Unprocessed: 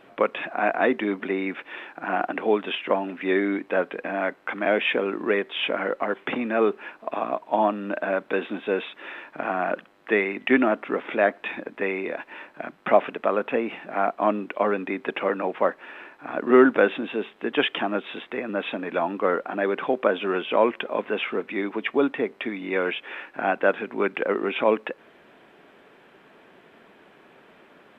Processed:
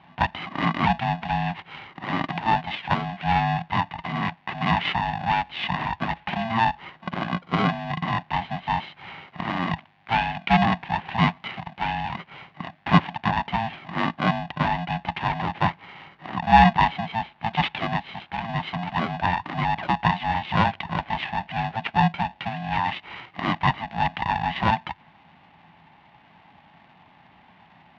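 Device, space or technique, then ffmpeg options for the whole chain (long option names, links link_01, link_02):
ring modulator pedal into a guitar cabinet: -af "aeval=exprs='val(0)*sgn(sin(2*PI*450*n/s))':channel_layout=same,highpass=87,equalizer=frequency=170:width_type=q:width=4:gain=8,equalizer=frequency=470:width_type=q:width=4:gain=-9,equalizer=frequency=830:width_type=q:width=4:gain=6,equalizer=frequency=1300:width_type=q:width=4:gain=-6,lowpass=frequency=3500:width=0.5412,lowpass=frequency=3500:width=1.3066,volume=-1dB"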